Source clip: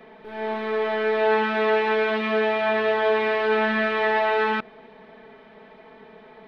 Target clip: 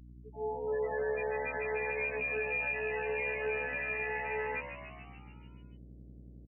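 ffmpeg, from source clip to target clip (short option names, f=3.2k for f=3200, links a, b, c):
-filter_complex "[0:a]afftfilt=real='re*gte(hypot(re,im),0.158)':imag='im*gte(hypot(re,im),0.158)':win_size=1024:overlap=0.75,highshelf=f=1.8k:t=q:w=3:g=12,asplit=2[a][b];[b]acompressor=threshold=-25dB:ratio=10,volume=0.5dB[c];[a][c]amix=inputs=2:normalize=0,alimiter=limit=-17dB:level=0:latency=1:release=149,afftfilt=real='hypot(re,im)*cos(PI*b)':imag='0':win_size=2048:overlap=0.75,acrossover=split=110|1900[d][e][f];[d]acrusher=bits=3:mix=0:aa=0.5[g];[g][e][f]amix=inputs=3:normalize=0,aeval=exprs='val(0)+0.00794*(sin(2*PI*60*n/s)+sin(2*PI*2*60*n/s)/2+sin(2*PI*3*60*n/s)/3+sin(2*PI*4*60*n/s)/4+sin(2*PI*5*60*n/s)/5)':c=same,asplit=9[h][i][j][k][l][m][n][o][p];[i]adelay=145,afreqshift=71,volume=-10dB[q];[j]adelay=290,afreqshift=142,volume=-13.9dB[r];[k]adelay=435,afreqshift=213,volume=-17.8dB[s];[l]adelay=580,afreqshift=284,volume=-21.6dB[t];[m]adelay=725,afreqshift=355,volume=-25.5dB[u];[n]adelay=870,afreqshift=426,volume=-29.4dB[v];[o]adelay=1015,afreqshift=497,volume=-33.3dB[w];[p]adelay=1160,afreqshift=568,volume=-37.1dB[x];[h][q][r][s][t][u][v][w][x]amix=inputs=9:normalize=0,volume=-8.5dB"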